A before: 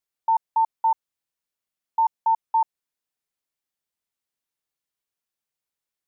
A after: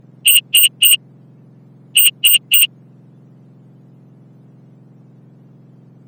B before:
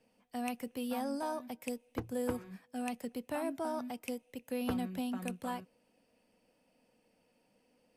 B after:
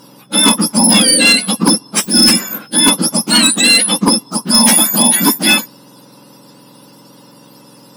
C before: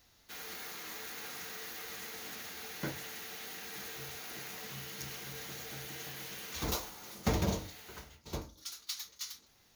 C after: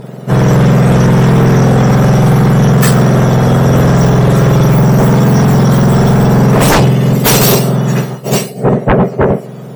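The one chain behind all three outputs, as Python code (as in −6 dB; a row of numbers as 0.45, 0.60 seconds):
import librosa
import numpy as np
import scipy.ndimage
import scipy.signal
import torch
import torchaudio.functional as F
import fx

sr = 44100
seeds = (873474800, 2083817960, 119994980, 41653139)

y = fx.octave_mirror(x, sr, pivot_hz=1600.0)
y = fx.fold_sine(y, sr, drive_db=17, ceiling_db=-15.0)
y = y * 10.0 ** (-2 / 20.0) / np.max(np.abs(y))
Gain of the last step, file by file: +10.5, +11.5, +11.0 decibels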